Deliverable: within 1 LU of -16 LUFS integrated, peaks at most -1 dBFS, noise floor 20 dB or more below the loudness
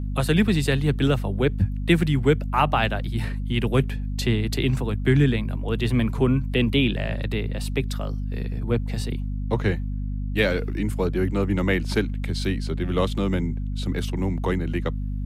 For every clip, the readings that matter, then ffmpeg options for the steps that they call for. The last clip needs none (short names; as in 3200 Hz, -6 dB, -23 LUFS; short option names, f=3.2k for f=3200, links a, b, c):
hum 50 Hz; harmonics up to 250 Hz; hum level -25 dBFS; loudness -24.0 LUFS; peak -5.5 dBFS; loudness target -16.0 LUFS
-> -af "bandreject=f=50:t=h:w=4,bandreject=f=100:t=h:w=4,bandreject=f=150:t=h:w=4,bandreject=f=200:t=h:w=4,bandreject=f=250:t=h:w=4"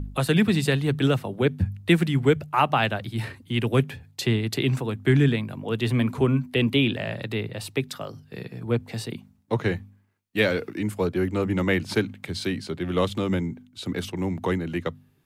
hum none; loudness -25.0 LUFS; peak -6.5 dBFS; loudness target -16.0 LUFS
-> -af "volume=9dB,alimiter=limit=-1dB:level=0:latency=1"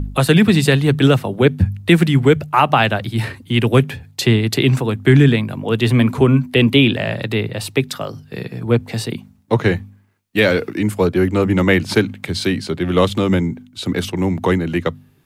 loudness -16.5 LUFS; peak -1.0 dBFS; noise floor -50 dBFS